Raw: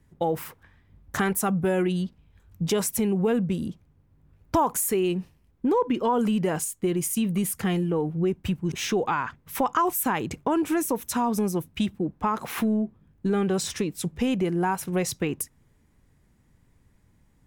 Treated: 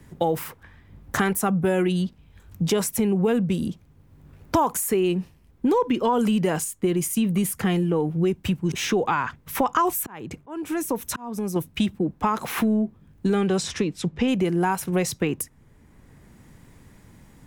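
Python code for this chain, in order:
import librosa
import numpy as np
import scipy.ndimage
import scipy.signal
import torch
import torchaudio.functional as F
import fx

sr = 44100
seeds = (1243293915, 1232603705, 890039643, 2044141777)

y = fx.auto_swell(x, sr, attack_ms=678.0, at=(9.96, 11.56))
y = fx.lowpass(y, sr, hz=fx.line((13.34, 11000.0), (14.27, 4100.0)), slope=12, at=(13.34, 14.27), fade=0.02)
y = fx.band_squash(y, sr, depth_pct=40)
y = y * librosa.db_to_amplitude(2.5)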